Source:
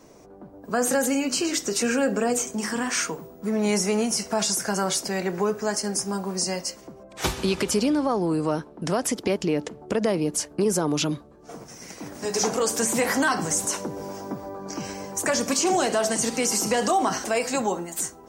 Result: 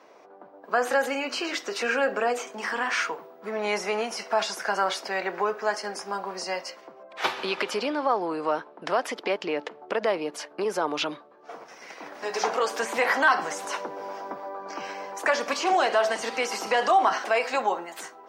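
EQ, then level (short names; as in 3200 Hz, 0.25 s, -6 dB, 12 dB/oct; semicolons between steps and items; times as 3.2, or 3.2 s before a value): HPF 690 Hz 12 dB/oct; air absorption 350 m; high shelf 6400 Hz +10.5 dB; +6.0 dB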